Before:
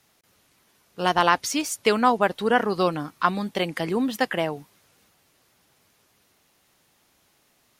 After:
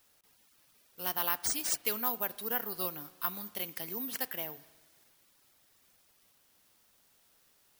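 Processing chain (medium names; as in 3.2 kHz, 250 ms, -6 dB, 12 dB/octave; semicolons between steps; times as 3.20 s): pre-emphasis filter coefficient 0.8; careless resampling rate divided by 3×, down none, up zero stuff; spring tank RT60 1.4 s, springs 38 ms, chirp 50 ms, DRR 17.5 dB; trim -5.5 dB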